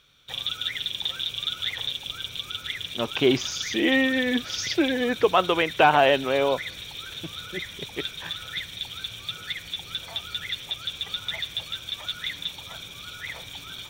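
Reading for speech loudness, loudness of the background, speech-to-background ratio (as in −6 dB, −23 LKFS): −23.0 LKFS, −31.5 LKFS, 8.5 dB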